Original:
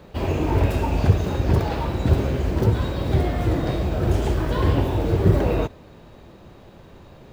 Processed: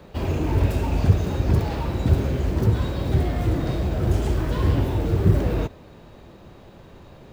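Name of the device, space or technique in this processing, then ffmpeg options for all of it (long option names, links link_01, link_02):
one-band saturation: -filter_complex "[0:a]acrossover=split=310|5000[link_01][link_02][link_03];[link_02]asoftclip=type=tanh:threshold=-29dB[link_04];[link_01][link_04][link_03]amix=inputs=3:normalize=0"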